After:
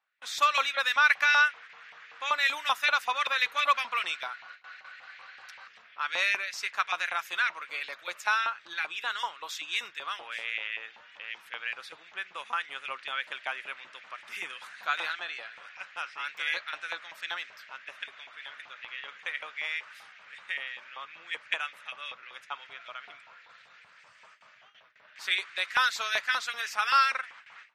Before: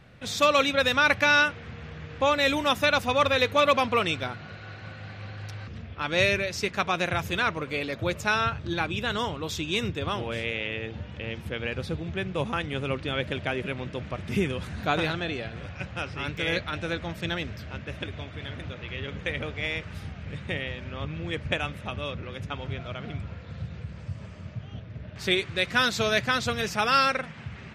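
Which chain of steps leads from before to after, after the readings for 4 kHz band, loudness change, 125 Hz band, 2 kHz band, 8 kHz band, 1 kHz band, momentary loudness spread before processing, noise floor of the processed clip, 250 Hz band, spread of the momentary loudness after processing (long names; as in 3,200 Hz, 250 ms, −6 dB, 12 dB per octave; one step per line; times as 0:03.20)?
−3.5 dB, −2.5 dB, below −40 dB, −1.0 dB, −4.0 dB, −2.0 dB, 17 LU, −57 dBFS, below −30 dB, 19 LU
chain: high-shelf EQ 3,700 Hz +2 dB
noise gate with hold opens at −32 dBFS
auto-filter high-pass saw up 5.2 Hz 880–2,100 Hz
level −6 dB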